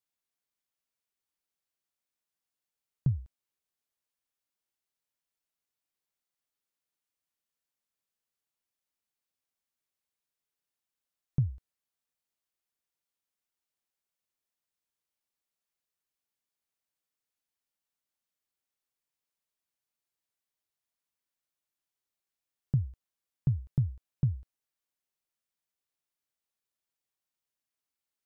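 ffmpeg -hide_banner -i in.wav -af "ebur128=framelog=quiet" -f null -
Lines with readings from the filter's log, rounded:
Integrated loudness:
  I:         -33.6 LUFS
  Threshold: -44.3 LUFS
Loudness range:
  LRA:         6.0 LU
  Threshold: -59.6 LUFS
  LRA low:   -41.8 LUFS
  LRA high:  -35.8 LUFS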